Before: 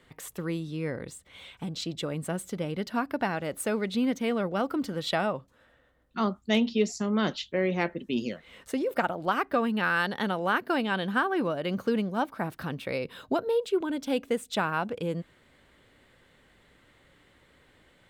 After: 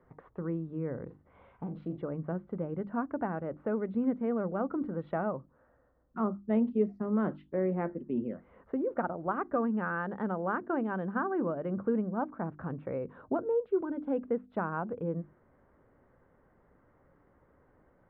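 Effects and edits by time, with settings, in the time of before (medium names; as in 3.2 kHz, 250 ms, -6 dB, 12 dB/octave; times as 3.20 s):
1.06–1.98 s: doubling 40 ms -7.5 dB
whole clip: dynamic bell 840 Hz, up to -4 dB, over -41 dBFS, Q 1.1; low-pass 1.3 kHz 24 dB/octave; hum notches 50/100/150/200/250/300/350 Hz; trim -1.5 dB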